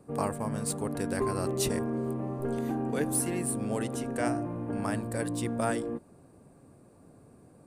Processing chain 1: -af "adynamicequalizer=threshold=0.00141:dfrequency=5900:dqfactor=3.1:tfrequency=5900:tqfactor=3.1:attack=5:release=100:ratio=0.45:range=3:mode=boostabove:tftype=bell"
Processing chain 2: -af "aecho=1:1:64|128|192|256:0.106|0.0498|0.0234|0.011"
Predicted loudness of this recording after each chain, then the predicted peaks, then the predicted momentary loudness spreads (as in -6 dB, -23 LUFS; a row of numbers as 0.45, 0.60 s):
-31.5, -31.5 LUFS; -13.5, -13.5 dBFS; 5, 5 LU